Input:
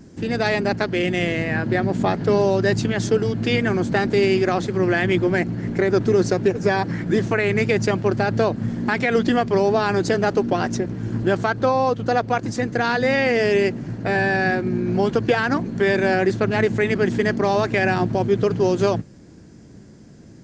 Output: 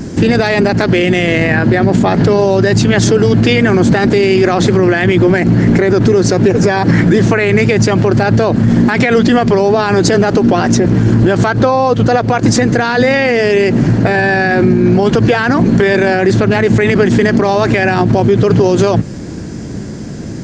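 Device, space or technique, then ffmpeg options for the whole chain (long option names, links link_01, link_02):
loud club master: -af "acompressor=threshold=-21dB:ratio=3,asoftclip=type=hard:threshold=-12dB,alimiter=level_in=22dB:limit=-1dB:release=50:level=0:latency=1,volume=-1dB"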